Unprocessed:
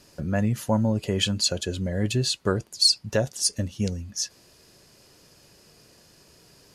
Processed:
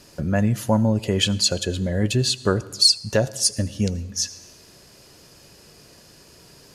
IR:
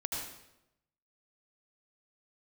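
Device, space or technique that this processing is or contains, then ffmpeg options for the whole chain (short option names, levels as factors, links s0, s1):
compressed reverb return: -filter_complex "[0:a]asplit=2[s0][s1];[1:a]atrim=start_sample=2205[s2];[s1][s2]afir=irnorm=-1:irlink=0,acompressor=threshold=0.0282:ratio=5,volume=0.355[s3];[s0][s3]amix=inputs=2:normalize=0,volume=1.41"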